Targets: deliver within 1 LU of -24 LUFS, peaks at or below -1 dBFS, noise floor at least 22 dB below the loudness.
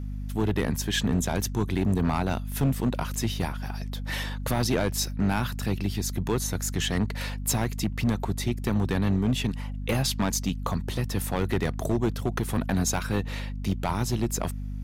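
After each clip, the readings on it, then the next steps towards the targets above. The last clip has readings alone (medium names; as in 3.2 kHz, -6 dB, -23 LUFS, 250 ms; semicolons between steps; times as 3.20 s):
clipped samples 1.8%; clipping level -18.0 dBFS; hum 50 Hz; highest harmonic 250 Hz; hum level -30 dBFS; loudness -28.0 LUFS; peak level -18.0 dBFS; loudness target -24.0 LUFS
-> clip repair -18 dBFS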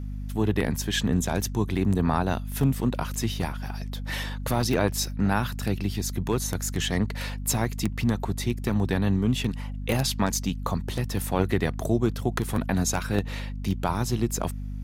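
clipped samples 0.0%; hum 50 Hz; highest harmonic 250 Hz; hum level -30 dBFS
-> de-hum 50 Hz, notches 5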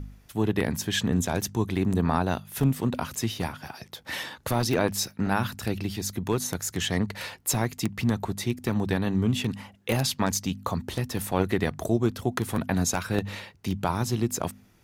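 hum not found; loudness -28.0 LUFS; peak level -8.5 dBFS; loudness target -24.0 LUFS
-> trim +4 dB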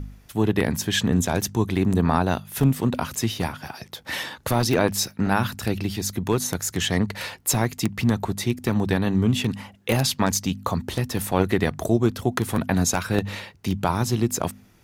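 loudness -24.0 LUFS; peak level -4.5 dBFS; noise floor -53 dBFS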